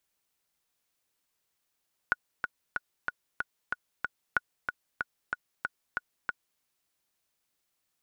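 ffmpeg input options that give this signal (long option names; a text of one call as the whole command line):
ffmpeg -f lavfi -i "aevalsrc='pow(10,(-11-6*gte(mod(t,7*60/187),60/187))/20)*sin(2*PI*1460*mod(t,60/187))*exp(-6.91*mod(t,60/187)/0.03)':duration=4.49:sample_rate=44100" out.wav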